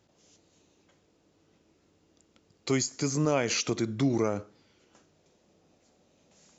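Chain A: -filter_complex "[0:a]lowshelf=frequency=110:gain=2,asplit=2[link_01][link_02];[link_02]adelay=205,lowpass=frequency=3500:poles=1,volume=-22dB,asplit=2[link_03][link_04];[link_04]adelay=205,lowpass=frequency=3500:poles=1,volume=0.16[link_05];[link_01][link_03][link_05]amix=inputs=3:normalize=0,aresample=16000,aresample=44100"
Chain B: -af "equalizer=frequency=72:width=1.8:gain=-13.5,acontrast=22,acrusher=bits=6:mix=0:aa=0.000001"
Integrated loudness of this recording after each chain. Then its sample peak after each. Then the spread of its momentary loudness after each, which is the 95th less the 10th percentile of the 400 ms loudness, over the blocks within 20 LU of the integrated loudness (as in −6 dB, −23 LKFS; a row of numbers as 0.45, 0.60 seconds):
−28.5, −24.0 LKFS; −14.0, −9.5 dBFS; 5, 5 LU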